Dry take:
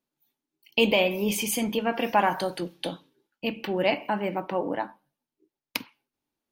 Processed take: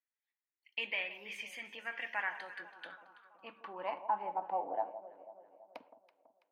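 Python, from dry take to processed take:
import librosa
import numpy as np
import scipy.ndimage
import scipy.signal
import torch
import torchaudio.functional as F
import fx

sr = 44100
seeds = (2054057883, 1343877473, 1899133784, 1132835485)

y = fx.echo_alternate(x, sr, ms=165, hz=1100.0, feedback_pct=70, wet_db=-12.0)
y = fx.filter_sweep_bandpass(y, sr, from_hz=1900.0, to_hz=660.0, start_s=2.36, end_s=5.01, q=6.3)
y = F.gain(torch.from_numpy(y), 1.0).numpy()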